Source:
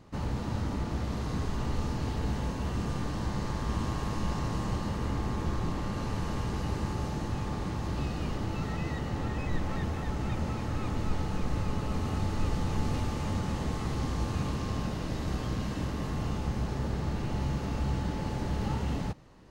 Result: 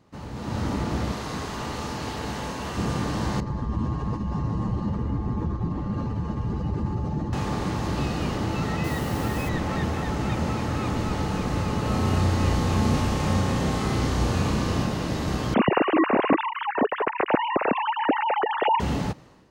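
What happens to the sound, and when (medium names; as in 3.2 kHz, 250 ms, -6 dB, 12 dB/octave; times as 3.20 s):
1.12–2.78 s: bass shelf 370 Hz -9 dB
3.40–7.33 s: spectral contrast enhancement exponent 1.6
8.84–9.49 s: word length cut 8-bit, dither none
11.82–14.84 s: flutter echo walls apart 5.7 m, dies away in 0.37 s
15.54–18.80 s: formants replaced by sine waves
whole clip: high-pass 110 Hz 6 dB/octave; level rider gain up to 12 dB; trim -3.5 dB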